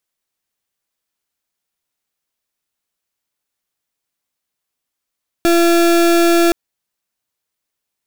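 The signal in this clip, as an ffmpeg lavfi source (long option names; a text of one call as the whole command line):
ffmpeg -f lavfi -i "aevalsrc='0.266*(2*lt(mod(340*t,1),0.34)-1)':duration=1.07:sample_rate=44100" out.wav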